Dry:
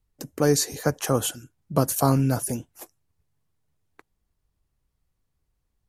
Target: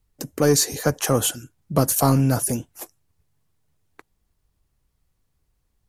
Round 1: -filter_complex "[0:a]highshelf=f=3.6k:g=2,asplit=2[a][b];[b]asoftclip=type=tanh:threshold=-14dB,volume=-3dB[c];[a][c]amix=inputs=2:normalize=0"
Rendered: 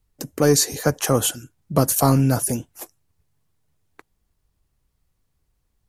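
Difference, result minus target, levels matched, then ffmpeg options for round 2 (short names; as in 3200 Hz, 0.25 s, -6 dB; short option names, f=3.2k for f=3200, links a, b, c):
soft clip: distortion -6 dB
-filter_complex "[0:a]highshelf=f=3.6k:g=2,asplit=2[a][b];[b]asoftclip=type=tanh:threshold=-21dB,volume=-3dB[c];[a][c]amix=inputs=2:normalize=0"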